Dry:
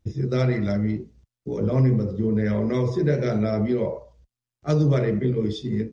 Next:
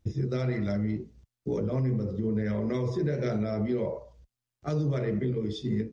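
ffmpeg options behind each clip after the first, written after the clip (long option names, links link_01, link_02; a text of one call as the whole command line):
ffmpeg -i in.wav -af "alimiter=limit=-20.5dB:level=0:latency=1:release=351" out.wav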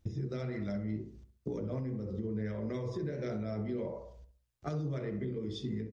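ffmpeg -i in.wav -filter_complex "[0:a]acompressor=threshold=-35dB:ratio=4,asplit=2[link_01][link_02];[link_02]adelay=65,lowpass=frequency=1500:poles=1,volume=-9dB,asplit=2[link_03][link_04];[link_04]adelay=65,lowpass=frequency=1500:poles=1,volume=0.42,asplit=2[link_05][link_06];[link_06]adelay=65,lowpass=frequency=1500:poles=1,volume=0.42,asplit=2[link_07][link_08];[link_08]adelay=65,lowpass=frequency=1500:poles=1,volume=0.42,asplit=2[link_09][link_10];[link_10]adelay=65,lowpass=frequency=1500:poles=1,volume=0.42[link_11];[link_01][link_03][link_05][link_07][link_09][link_11]amix=inputs=6:normalize=0" out.wav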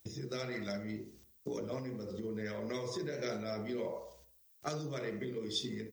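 ffmpeg -i in.wav -af "aemphasis=mode=production:type=riaa,volume=3dB" out.wav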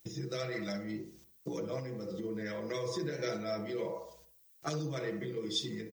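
ffmpeg -i in.wav -af "aecho=1:1:6.1:0.77" out.wav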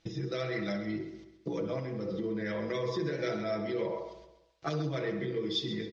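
ffmpeg -i in.wav -filter_complex "[0:a]lowpass=frequency=4600:width=0.5412,lowpass=frequency=4600:width=1.3066,asplit=2[link_01][link_02];[link_02]alimiter=level_in=7.5dB:limit=-24dB:level=0:latency=1:release=270,volume=-7.5dB,volume=-2.5dB[link_03];[link_01][link_03]amix=inputs=2:normalize=0,aecho=1:1:133|266|399|532:0.251|0.105|0.0443|0.0186" out.wav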